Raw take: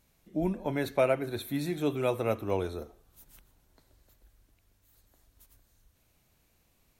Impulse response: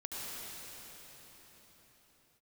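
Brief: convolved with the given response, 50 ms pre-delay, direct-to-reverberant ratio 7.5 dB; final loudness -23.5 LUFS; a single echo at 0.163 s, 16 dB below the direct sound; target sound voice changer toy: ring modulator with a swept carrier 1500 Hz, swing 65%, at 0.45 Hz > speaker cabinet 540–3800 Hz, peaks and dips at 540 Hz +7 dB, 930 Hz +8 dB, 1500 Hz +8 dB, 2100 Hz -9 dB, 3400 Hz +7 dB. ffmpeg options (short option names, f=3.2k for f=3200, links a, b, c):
-filter_complex "[0:a]aecho=1:1:163:0.158,asplit=2[a][b];[1:a]atrim=start_sample=2205,adelay=50[c];[b][c]afir=irnorm=-1:irlink=0,volume=-9.5dB[d];[a][d]amix=inputs=2:normalize=0,aeval=exprs='val(0)*sin(2*PI*1500*n/s+1500*0.65/0.45*sin(2*PI*0.45*n/s))':c=same,highpass=540,equalizer=f=540:t=q:w=4:g=7,equalizer=f=930:t=q:w=4:g=8,equalizer=f=1.5k:t=q:w=4:g=8,equalizer=f=2.1k:t=q:w=4:g=-9,equalizer=f=3.4k:t=q:w=4:g=7,lowpass=f=3.8k:w=0.5412,lowpass=f=3.8k:w=1.3066,volume=6.5dB"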